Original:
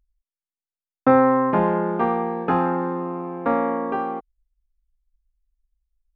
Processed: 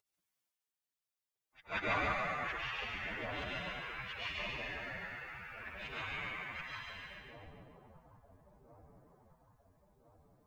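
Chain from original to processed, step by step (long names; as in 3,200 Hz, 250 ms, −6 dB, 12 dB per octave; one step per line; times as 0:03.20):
every overlapping window played backwards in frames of 223 ms
gate on every frequency bin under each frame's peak −30 dB weak
random phases in short frames
echo with a time of its own for lows and highs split 770 Hz, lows 799 ms, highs 84 ms, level −4.5 dB
phase-vocoder stretch with locked phases 1.7×
level +11 dB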